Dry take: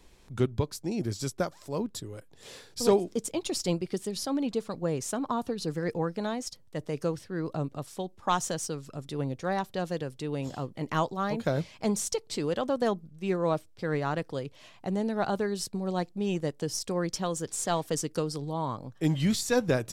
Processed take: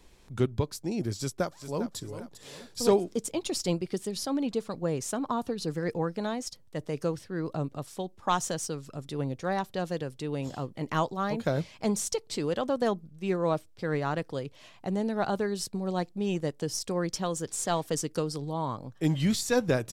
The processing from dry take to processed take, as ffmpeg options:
ffmpeg -i in.wav -filter_complex "[0:a]asplit=2[link_01][link_02];[link_02]afade=type=in:start_time=1.17:duration=0.01,afade=type=out:start_time=1.97:duration=0.01,aecho=0:1:400|800|1200|1600:0.266073|0.106429|0.0425716|0.0170286[link_03];[link_01][link_03]amix=inputs=2:normalize=0" out.wav

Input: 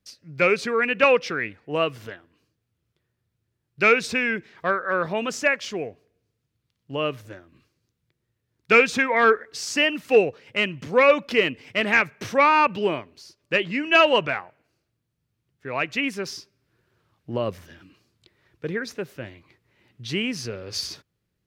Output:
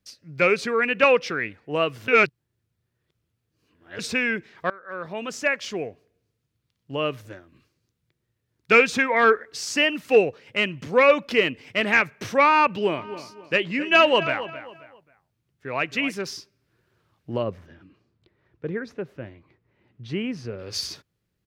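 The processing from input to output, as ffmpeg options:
ffmpeg -i in.wav -filter_complex "[0:a]asplit=3[link_01][link_02][link_03];[link_01]afade=type=out:start_time=12.97:duration=0.02[link_04];[link_02]asplit=2[link_05][link_06];[link_06]adelay=267,lowpass=frequency=3300:poles=1,volume=-13dB,asplit=2[link_07][link_08];[link_08]adelay=267,lowpass=frequency=3300:poles=1,volume=0.33,asplit=2[link_09][link_10];[link_10]adelay=267,lowpass=frequency=3300:poles=1,volume=0.33[link_11];[link_05][link_07][link_09][link_11]amix=inputs=4:normalize=0,afade=type=in:start_time=12.97:duration=0.02,afade=type=out:start_time=16.21:duration=0.02[link_12];[link_03]afade=type=in:start_time=16.21:duration=0.02[link_13];[link_04][link_12][link_13]amix=inputs=3:normalize=0,asplit=3[link_14][link_15][link_16];[link_14]afade=type=out:start_time=17.42:duration=0.02[link_17];[link_15]lowpass=frequency=1100:poles=1,afade=type=in:start_time=17.42:duration=0.02,afade=type=out:start_time=20.58:duration=0.02[link_18];[link_16]afade=type=in:start_time=20.58:duration=0.02[link_19];[link_17][link_18][link_19]amix=inputs=3:normalize=0,asplit=4[link_20][link_21][link_22][link_23];[link_20]atrim=end=2.082[link_24];[link_21]atrim=start=2.078:end=3.992,asetpts=PTS-STARTPTS,areverse[link_25];[link_22]atrim=start=3.988:end=4.7,asetpts=PTS-STARTPTS,afade=type=out:start_time=0.708:duration=0.004:curve=hsin:silence=0.0707946[link_26];[link_23]atrim=start=4.7,asetpts=PTS-STARTPTS,afade=type=in:duration=1.01:silence=0.0707946[link_27];[link_24][link_25]acrossfade=duration=0.004:curve1=hsin:curve2=hsin[link_28];[link_26][link_27]concat=n=2:v=0:a=1[link_29];[link_28][link_29]acrossfade=duration=0.004:curve1=hsin:curve2=hsin" out.wav

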